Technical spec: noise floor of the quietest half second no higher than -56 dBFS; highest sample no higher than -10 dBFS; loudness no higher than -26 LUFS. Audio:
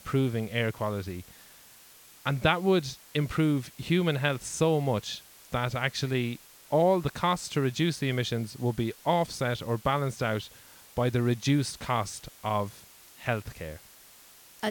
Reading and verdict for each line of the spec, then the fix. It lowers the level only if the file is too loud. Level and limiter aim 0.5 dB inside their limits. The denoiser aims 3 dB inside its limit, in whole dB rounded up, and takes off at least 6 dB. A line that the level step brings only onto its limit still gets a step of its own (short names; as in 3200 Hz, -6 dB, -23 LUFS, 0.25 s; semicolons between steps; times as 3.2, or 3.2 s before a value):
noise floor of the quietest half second -54 dBFS: fail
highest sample -8.5 dBFS: fail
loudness -29.0 LUFS: OK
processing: denoiser 6 dB, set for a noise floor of -54 dBFS; limiter -10.5 dBFS